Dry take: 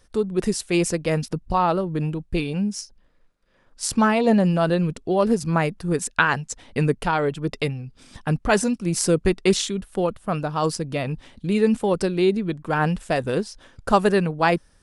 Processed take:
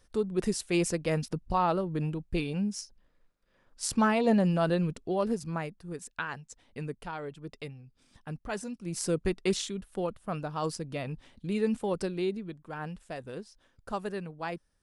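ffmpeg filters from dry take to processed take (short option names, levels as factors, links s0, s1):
-af "volume=1.06,afade=t=out:st=4.81:d=0.98:silence=0.316228,afade=t=in:st=8.67:d=0.47:silence=0.446684,afade=t=out:st=12.03:d=0.6:silence=0.421697"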